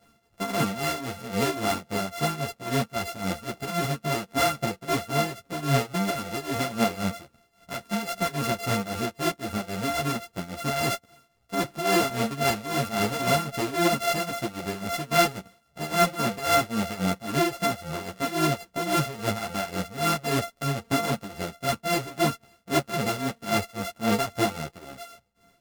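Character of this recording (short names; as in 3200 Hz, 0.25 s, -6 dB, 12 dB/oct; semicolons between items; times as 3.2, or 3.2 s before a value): a buzz of ramps at a fixed pitch in blocks of 64 samples; tremolo triangle 3.7 Hz, depth 85%; a shimmering, thickened sound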